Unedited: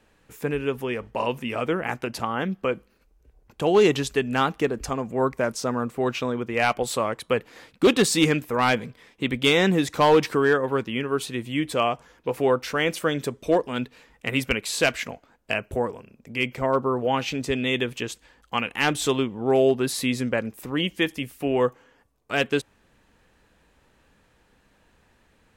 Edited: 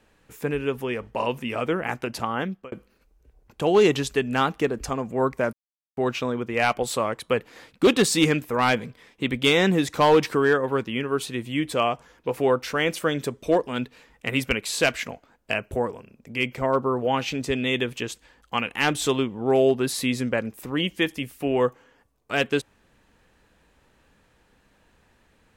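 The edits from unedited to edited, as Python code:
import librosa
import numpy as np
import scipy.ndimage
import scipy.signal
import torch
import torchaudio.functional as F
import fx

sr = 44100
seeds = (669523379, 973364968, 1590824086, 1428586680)

y = fx.edit(x, sr, fx.fade_out_span(start_s=2.4, length_s=0.32),
    fx.silence(start_s=5.53, length_s=0.44), tone=tone)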